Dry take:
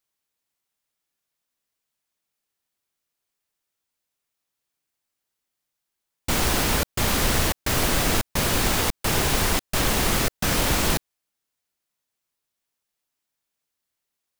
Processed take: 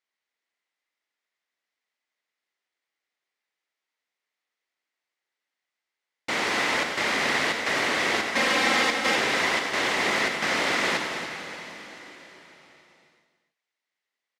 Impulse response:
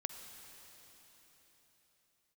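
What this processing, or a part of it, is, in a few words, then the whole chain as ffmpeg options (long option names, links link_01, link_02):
station announcement: -filter_complex "[0:a]asettb=1/sr,asplit=3[link_01][link_02][link_03];[link_01]atrim=end=8.314[link_04];[link_02]atrim=start=8.31:end=9.16,asetpts=PTS-STARTPTS,afade=type=in:duration=0.004:curve=qsin,afade=type=out:start_time=0.846:duration=0.004:curve=qsin,aecho=1:1:3.8:0.99,atrim=end_sample=37485[link_05];[link_03]atrim=start=9.156[link_06];[link_04][link_05]acrossfade=duration=0.004:curve1=hsin:curve2=qsin[link_07];[link_07][link_06]acrossfade=duration=0.004:curve1=qsin:curve2=hsin,highpass=330,lowpass=4700,equalizer=frequency=2000:width_type=o:width=0.31:gain=9.5,aecho=1:1:96.21|279.9:0.316|0.316[link_08];[1:a]atrim=start_sample=2205[link_09];[link_08][link_09]afir=irnorm=-1:irlink=0"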